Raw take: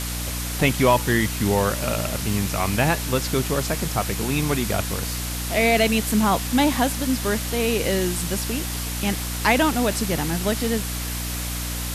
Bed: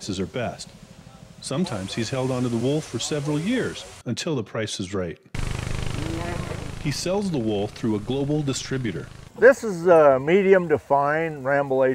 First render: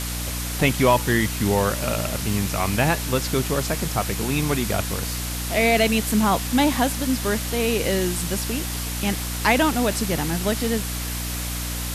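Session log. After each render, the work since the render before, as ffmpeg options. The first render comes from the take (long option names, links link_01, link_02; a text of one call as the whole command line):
ffmpeg -i in.wav -af anull out.wav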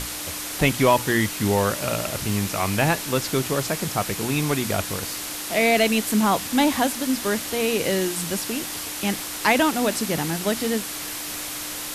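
ffmpeg -i in.wav -af "bandreject=frequency=60:width_type=h:width=6,bandreject=frequency=120:width_type=h:width=6,bandreject=frequency=180:width_type=h:width=6,bandreject=frequency=240:width_type=h:width=6" out.wav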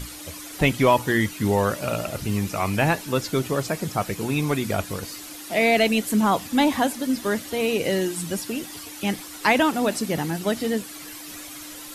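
ffmpeg -i in.wav -af "afftdn=noise_reduction=11:noise_floor=-32" out.wav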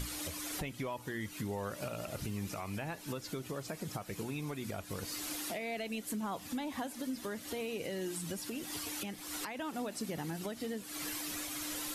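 ffmpeg -i in.wav -af "acompressor=threshold=-31dB:ratio=10,alimiter=level_in=5dB:limit=-24dB:level=0:latency=1:release=396,volume=-5dB" out.wav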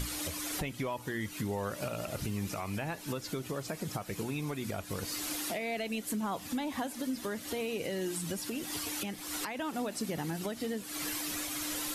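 ffmpeg -i in.wav -af "volume=3.5dB" out.wav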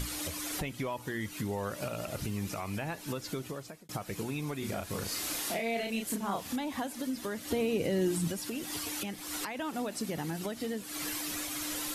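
ffmpeg -i in.wav -filter_complex "[0:a]asettb=1/sr,asplit=3[link_01][link_02][link_03];[link_01]atrim=end=4.594[link_04];[link_02]atrim=start=4.59:end=6.56,asetpts=PTS-STARTPTS,afade=type=in:duration=0.004:curve=qsin,afade=type=out:start_time=1.966:duration=0.004:curve=qsin,asplit=2[link_05][link_06];[link_06]adelay=35,volume=-3dB[link_07];[link_05][link_07]amix=inputs=2:normalize=0,atrim=end_sample=86877[link_08];[link_03]atrim=start=6.556[link_09];[link_04][link_08]acrossfade=duration=0.004:curve1=hsin:curve2=qsin[link_10];[link_10][link_09]acrossfade=duration=0.004:curve1=qsin:curve2=hsin,asettb=1/sr,asplit=3[link_11][link_12][link_13];[link_11]atrim=end=7.504[link_14];[link_12]atrim=start=7.5:end=8.28,asetpts=PTS-STARTPTS,afade=type=in:duration=0.004:curve=qsin,afade=type=out:start_time=0.776:duration=0.004:curve=qsin,lowshelf=frequency=480:gain=9.5[link_15];[link_13]atrim=start=8.276[link_16];[link_14][link_15]acrossfade=duration=0.004:curve1=hsin:curve2=qsin[link_17];[link_17][link_16]acrossfade=duration=0.004:curve1=qsin:curve2=hsin,asplit=2[link_18][link_19];[link_18]atrim=end=3.89,asetpts=PTS-STARTPTS,afade=type=out:start_time=3.39:duration=0.5[link_20];[link_19]atrim=start=3.89,asetpts=PTS-STARTPTS,afade=type=in:duration=0.004:curve=hsin[link_21];[link_20][link_21]concat=n=2:v=0:a=1" out.wav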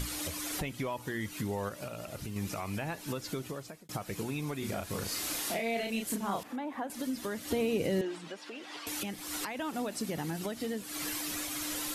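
ffmpeg -i in.wav -filter_complex "[0:a]asettb=1/sr,asplit=3[link_01][link_02][link_03];[link_01]atrim=end=6.434[link_04];[link_02]atrim=start=6.43:end=6.9,asetpts=PTS-STARTPTS,afade=type=in:duration=0.004:curve=qsin,afade=type=out:start_time=0.466:duration=0.004:curve=qsin,acrossover=split=230 2100:gain=0.0891 1 0.141[link_05][link_06][link_07];[link_05][link_06][link_07]amix=inputs=3:normalize=0[link_08];[link_03]atrim=start=6.896[link_09];[link_04][link_08]acrossfade=duration=0.004:curve1=hsin:curve2=qsin[link_10];[link_10][link_09]acrossfade=duration=0.004:curve1=qsin:curve2=hsin,asettb=1/sr,asplit=3[link_11][link_12][link_13];[link_11]atrim=end=8.014[link_14];[link_12]atrim=start=8.01:end=8.87,asetpts=PTS-STARTPTS,afade=type=in:duration=0.004:curve=qsin,afade=type=out:start_time=0.856:duration=0.004:curve=qsin,highpass=480,lowpass=3300[link_15];[link_13]atrim=start=8.866[link_16];[link_14][link_15]acrossfade=duration=0.004:curve1=hsin:curve2=qsin[link_17];[link_17][link_16]acrossfade=duration=0.004:curve1=qsin:curve2=hsin,asplit=3[link_18][link_19][link_20];[link_18]atrim=end=1.692[link_21];[link_19]atrim=start=1.688:end=2.362,asetpts=PTS-STARTPTS,volume=-4.5dB[link_22];[link_20]atrim=start=2.358[link_23];[link_21][link_22]acrossfade=duration=0.004:curve1=hsin:curve2=hsin[link_24];[link_24][link_23]acrossfade=duration=0.004:curve1=hsin:curve2=hsin" out.wav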